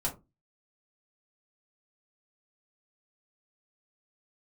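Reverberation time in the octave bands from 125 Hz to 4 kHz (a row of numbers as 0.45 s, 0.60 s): 0.35 s, 0.35 s, 0.25 s, 0.20 s, 0.15 s, 0.15 s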